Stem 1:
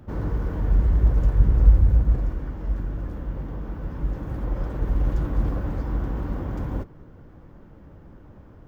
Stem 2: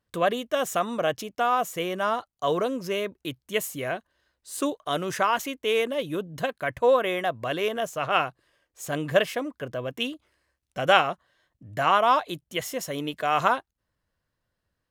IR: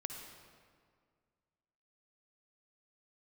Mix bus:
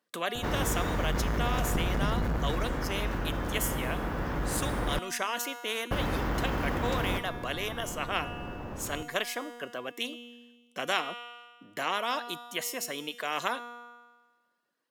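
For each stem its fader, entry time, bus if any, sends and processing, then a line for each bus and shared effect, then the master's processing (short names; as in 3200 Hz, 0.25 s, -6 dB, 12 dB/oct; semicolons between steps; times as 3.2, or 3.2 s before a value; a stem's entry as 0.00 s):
-2.0 dB, 0.35 s, muted 4.99–5.91, no send, sine folder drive 10 dB, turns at -3 dBFS
+0.5 dB, 0.00 s, no send, reverb removal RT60 0.7 s; HPF 230 Hz 24 dB/oct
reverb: off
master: resonator 240 Hz, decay 1.3 s, mix 70%; spectral compressor 2:1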